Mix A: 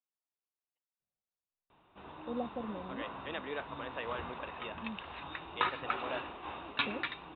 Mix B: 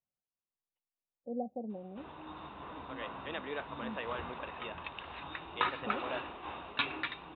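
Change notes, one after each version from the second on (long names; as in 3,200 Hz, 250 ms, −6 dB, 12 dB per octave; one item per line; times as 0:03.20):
first voice: entry −1.00 s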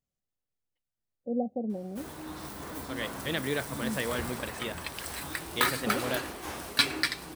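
second voice: remove band-pass filter 320–2,800 Hz
master: remove Chebyshev low-pass with heavy ripple 3,800 Hz, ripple 9 dB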